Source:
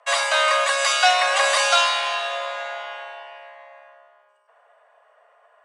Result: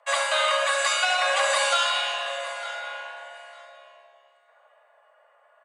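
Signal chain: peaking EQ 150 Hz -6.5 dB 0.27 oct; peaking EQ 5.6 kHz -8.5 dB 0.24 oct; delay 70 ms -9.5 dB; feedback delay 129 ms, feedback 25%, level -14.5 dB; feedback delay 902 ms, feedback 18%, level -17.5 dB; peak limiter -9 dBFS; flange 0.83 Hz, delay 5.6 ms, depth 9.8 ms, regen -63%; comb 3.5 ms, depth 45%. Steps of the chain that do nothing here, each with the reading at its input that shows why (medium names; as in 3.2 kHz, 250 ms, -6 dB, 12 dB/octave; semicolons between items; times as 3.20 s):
peaking EQ 150 Hz: input has nothing below 400 Hz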